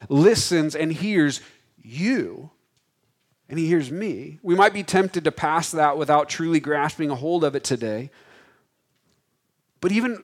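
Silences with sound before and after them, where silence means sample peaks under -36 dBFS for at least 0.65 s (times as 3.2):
2.46–3.5
8.07–9.83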